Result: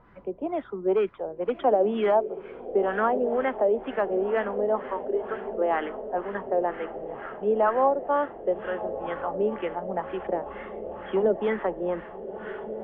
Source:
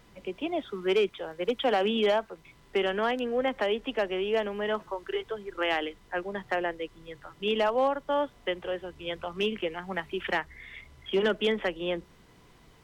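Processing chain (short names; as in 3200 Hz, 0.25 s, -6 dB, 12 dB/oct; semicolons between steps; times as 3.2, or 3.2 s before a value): diffused feedback echo 1.289 s, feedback 63%, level -11.5 dB; LFO low-pass sine 2.1 Hz 550–1600 Hz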